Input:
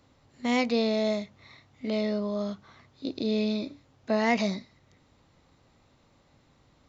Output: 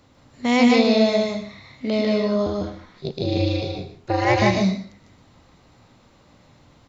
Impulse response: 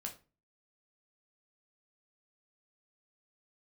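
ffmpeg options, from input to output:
-filter_complex "[0:a]asettb=1/sr,asplit=3[link_01][link_02][link_03];[link_01]atrim=end=2.464[link_04];[link_02]atrim=start=2.46:end=4.42,asetpts=PTS-STARTPTS,afade=type=in:duration=0.004:curve=qsin,afade=type=out:start_time=1.956:duration=0.004:curve=qsin,aeval=exprs='val(0)*sin(2*PI*120*n/s)':channel_layout=same[link_05];[link_03]atrim=start=4.416[link_06];[link_04][link_05]acrossfade=duration=0.004:curve1=hsin:curve2=qsin[link_07];[link_07][link_06]acrossfade=duration=0.004:curve1=qsin:curve2=hsin,aecho=1:1:124:0.211,asplit=2[link_08][link_09];[1:a]atrim=start_sample=2205,adelay=149[link_10];[link_09][link_10]afir=irnorm=-1:irlink=0,volume=1.5dB[link_11];[link_08][link_11]amix=inputs=2:normalize=0,volume=6.5dB"

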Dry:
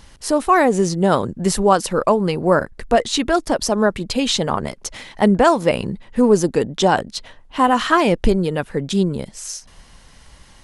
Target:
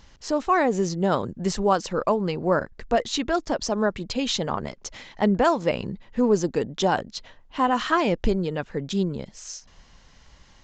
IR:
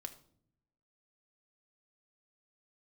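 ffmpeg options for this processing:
-af "aresample=16000,aresample=44100,volume=-6.5dB"

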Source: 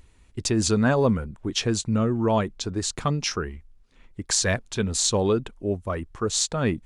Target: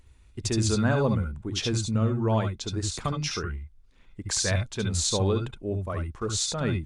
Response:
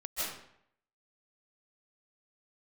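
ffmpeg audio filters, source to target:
-filter_complex "[1:a]atrim=start_sample=2205,atrim=end_sample=6174,asetrate=83790,aresample=44100[link_01];[0:a][link_01]afir=irnorm=-1:irlink=0,volume=6dB"

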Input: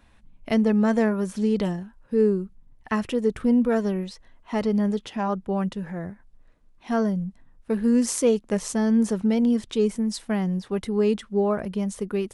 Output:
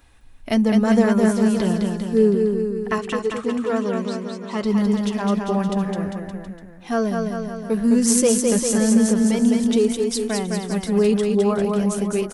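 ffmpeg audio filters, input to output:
ffmpeg -i in.wav -filter_complex "[0:a]highshelf=frequency=5600:gain=9.5,flanger=delay=2.4:depth=3.4:regen=-43:speed=0.3:shape=sinusoidal,asettb=1/sr,asplit=3[link_01][link_02][link_03];[link_01]atrim=end=2.984[link_04];[link_02]atrim=start=2.98:end=4.64,asetpts=PTS-STARTPTS,afade=type=in:duration=0.004:curve=qsin,afade=type=out:start_time=1.656:duration=0.004:curve=qsin,highpass=160,equalizer=frequency=250:width_type=q:width=4:gain=-5,equalizer=frequency=470:width_type=q:width=4:gain=-4,equalizer=frequency=710:width_type=q:width=4:gain=-4,equalizer=frequency=1100:width_type=q:width=4:gain=6,equalizer=frequency=1700:width_type=q:width=4:gain=-4,equalizer=frequency=5300:width_type=q:width=4:gain=-6,lowpass=frequency=8100:width=0.5412,lowpass=frequency=8100:width=1.3066[link_05];[link_03]atrim=start=4.636[link_06];[link_04][link_05]acrossfade=duration=0.004:curve1=hsin:curve2=qsin[link_07];[link_07][link_06]acrossfade=duration=0.004:curve1=qsin:curve2=hsin,aecho=1:1:210|399|569.1|722.2|860:0.631|0.398|0.251|0.158|0.1,volume=6dB" out.wav

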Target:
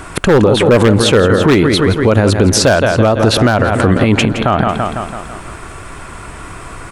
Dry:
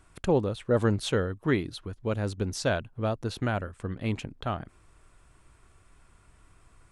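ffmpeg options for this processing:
ffmpeg -i in.wav -filter_complex "[0:a]lowshelf=frequency=120:gain=-10.5,aecho=1:1:166|332|498|664|830|996:0.211|0.118|0.0663|0.0371|0.0208|0.0116,acrossover=split=2400[link_01][link_02];[link_01]acontrast=25[link_03];[link_03][link_02]amix=inputs=2:normalize=0,aeval=exprs='0.188*(abs(mod(val(0)/0.188+3,4)-2)-1)':channel_layout=same,asplit=2[link_04][link_05];[link_05]acompressor=threshold=-38dB:ratio=6,volume=-2dB[link_06];[link_04][link_06]amix=inputs=2:normalize=0,alimiter=level_in=24.5dB:limit=-1dB:release=50:level=0:latency=1,volume=-1dB" out.wav

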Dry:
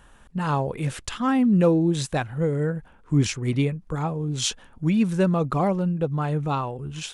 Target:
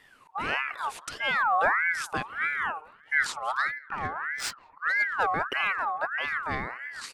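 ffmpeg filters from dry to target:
ffmpeg -i in.wav -filter_complex "[0:a]asplit=2[link_01][link_02];[link_02]adelay=186,lowpass=frequency=3100:poles=1,volume=-23dB,asplit=2[link_03][link_04];[link_04]adelay=186,lowpass=frequency=3100:poles=1,volume=0.37[link_05];[link_01][link_03][link_05]amix=inputs=3:normalize=0,asettb=1/sr,asplit=3[link_06][link_07][link_08];[link_06]atrim=end=3.784[link_09];[link_07]atrim=start=3.78:end=5.27,asetpts=PTS-STARTPTS,afade=type=in:duration=0.004:curve=qsin,afade=type=out:start_time=1.486:duration=0.004:curve=qsin,adynamicsmooth=sensitivity=6:basefreq=1400[link_10];[link_08]atrim=start=5.266[link_11];[link_09][link_10]acrossfade=duration=0.004:curve1=hsin:curve2=qsin[link_12];[link_12][link_11]acrossfade=duration=0.004:curve1=qsin:curve2=hsin,aeval=exprs='val(0)*sin(2*PI*1400*n/s+1400*0.35/1.6*sin(2*PI*1.6*n/s))':channel_layout=same,volume=-3dB" out.wav

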